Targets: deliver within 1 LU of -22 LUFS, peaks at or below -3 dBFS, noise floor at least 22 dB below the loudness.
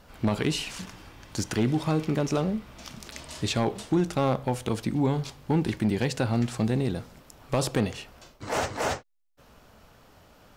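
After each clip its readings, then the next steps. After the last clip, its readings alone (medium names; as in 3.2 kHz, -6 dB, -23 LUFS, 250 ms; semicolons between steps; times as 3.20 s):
clipped samples 0.4%; clipping level -16.5 dBFS; loudness -28.0 LUFS; peak level -16.5 dBFS; loudness target -22.0 LUFS
-> clip repair -16.5 dBFS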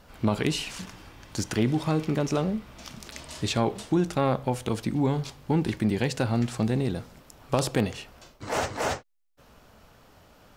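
clipped samples 0.0%; loudness -28.0 LUFS; peak level -7.5 dBFS; loudness target -22.0 LUFS
-> trim +6 dB; peak limiter -3 dBFS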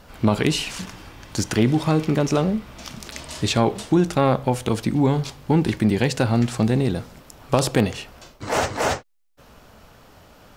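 loudness -22.0 LUFS; peak level -3.0 dBFS; noise floor -50 dBFS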